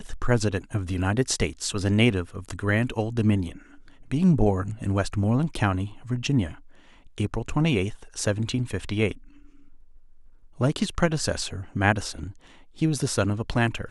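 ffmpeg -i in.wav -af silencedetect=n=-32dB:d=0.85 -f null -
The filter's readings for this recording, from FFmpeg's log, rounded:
silence_start: 9.12
silence_end: 10.60 | silence_duration: 1.48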